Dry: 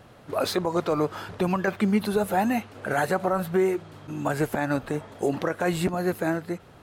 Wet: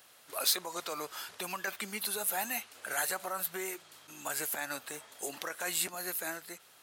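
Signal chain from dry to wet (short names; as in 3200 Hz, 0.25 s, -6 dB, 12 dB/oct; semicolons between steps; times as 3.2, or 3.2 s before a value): differentiator; gain +6.5 dB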